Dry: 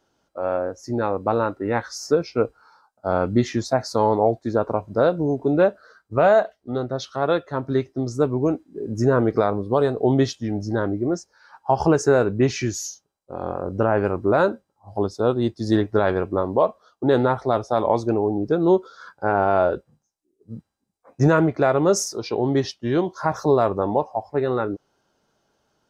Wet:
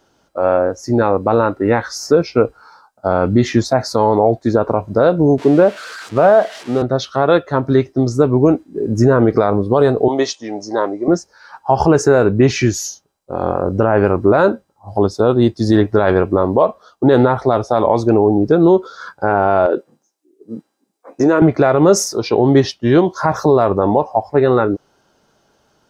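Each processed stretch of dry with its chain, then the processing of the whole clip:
5.38–6.82 s: zero-crossing glitches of -18 dBFS + high-pass 140 Hz + tape spacing loss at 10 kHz 27 dB
10.08–11.08 s: upward compressor, threshold -39 dBFS + cabinet simulation 490–8700 Hz, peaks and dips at 1 kHz +5 dB, 1.5 kHz -9 dB, 3.1 kHz -4 dB, 6.2 kHz +4 dB
19.66–21.42 s: resonant high-pass 310 Hz, resonance Q 2 + compression 3:1, threshold -21 dBFS
whole clip: dynamic bell 7 kHz, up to -4 dB, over -43 dBFS, Q 0.76; loudness maximiser +11 dB; trim -1 dB

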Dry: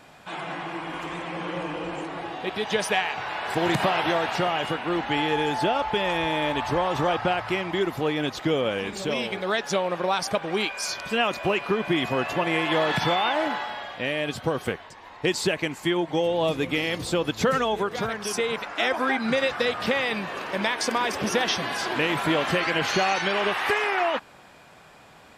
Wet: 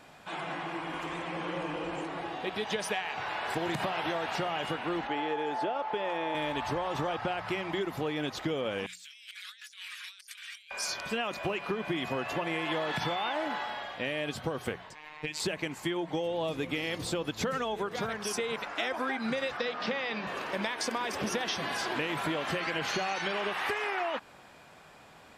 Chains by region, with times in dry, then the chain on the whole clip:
5.07–6.35 s: high-pass 470 Hz + tilt EQ -3.5 dB/octave
8.86–10.71 s: Bessel high-pass 3 kHz, order 8 + peaking EQ 10 kHz +5 dB 1.2 oct + compressor with a negative ratio -46 dBFS
14.95–15.40 s: peaking EQ 2.4 kHz +12.5 dB 0.7 oct + compression, threshold -25 dBFS + robot voice 152 Hz
19.57–20.27 s: Chebyshev band-pass 160–5700 Hz, order 3 + hum notches 50/100/150/200/250/300/350/400/450 Hz
whole clip: hum notches 60/120/180 Hz; compression, threshold -25 dBFS; trim -3.5 dB

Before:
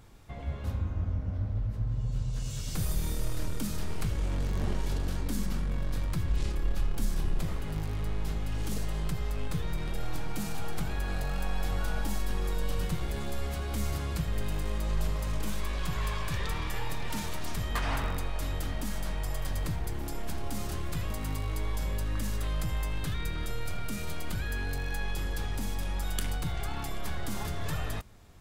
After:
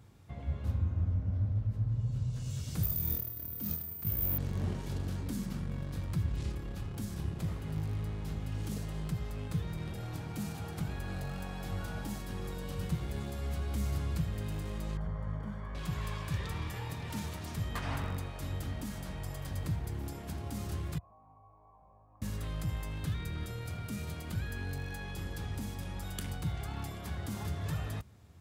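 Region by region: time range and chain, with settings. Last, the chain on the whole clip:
2.83–4.38 s: careless resampling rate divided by 3×, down filtered, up zero stuff + transformer saturation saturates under 100 Hz
14.97–15.75 s: Savitzky-Golay filter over 41 samples + peaking EQ 330 Hz -14 dB 0.37 oct
20.98–22.22 s: cascade formant filter a + distance through air 330 m
whole clip: high-pass 71 Hz 24 dB/octave; bass shelf 200 Hz +10.5 dB; trim -6.5 dB

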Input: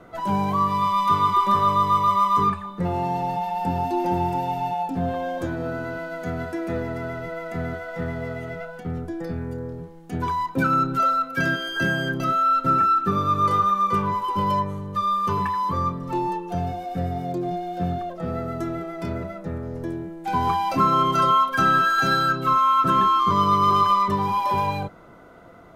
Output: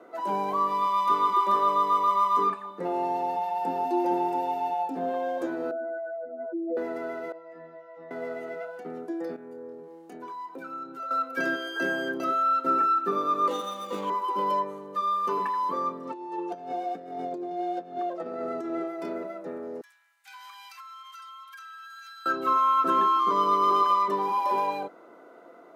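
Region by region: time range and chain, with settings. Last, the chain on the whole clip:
5.71–6.77 s: spectral contrast enhancement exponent 3.6 + inverse Chebyshev high-pass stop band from 150 Hz
7.32–8.11 s: low-pass 4 kHz + inharmonic resonator 160 Hz, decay 0.43 s, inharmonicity 0.002
9.36–11.11 s: compression 2.5:1, threshold -39 dBFS + doubling 24 ms -8 dB
13.48–14.10 s: median filter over 25 samples + comb 3.8 ms, depth 70%
16.05–18.88 s: low-pass 8.3 kHz + compressor with a negative ratio -29 dBFS, ratio -0.5
19.81–22.26 s: Bessel high-pass 2.2 kHz, order 8 + compression 10:1, threshold -37 dBFS
whole clip: high-pass 310 Hz 24 dB/octave; tilt shelf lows +4.5 dB, about 840 Hz; band-stop 3.3 kHz, Q 23; trim -2.5 dB

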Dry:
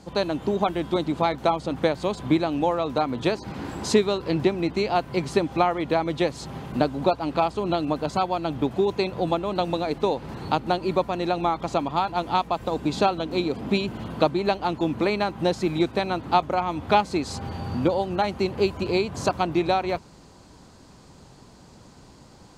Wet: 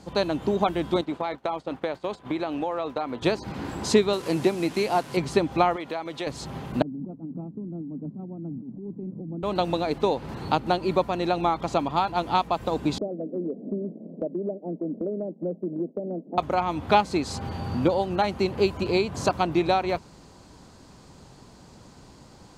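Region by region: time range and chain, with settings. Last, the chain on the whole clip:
1.01–3.22 s: expander -29 dBFS + tone controls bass -10 dB, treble -7 dB + compression 5:1, threshold -23 dBFS
4.13–5.17 s: one-bit delta coder 64 kbps, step -37 dBFS + Bessel high-pass 160 Hz + tape noise reduction on one side only encoder only
5.76–6.27 s: high-pass 490 Hz 6 dB/octave + compression 2:1, threshold -31 dBFS
6.82–9.43 s: Butterworth band-pass 210 Hz, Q 1.6 + compressor with a negative ratio -34 dBFS
12.98–16.38 s: expander -30 dBFS + Chebyshev band-pass 170–620 Hz, order 4 + compression 2.5:1, threshold -27 dBFS
whole clip: none

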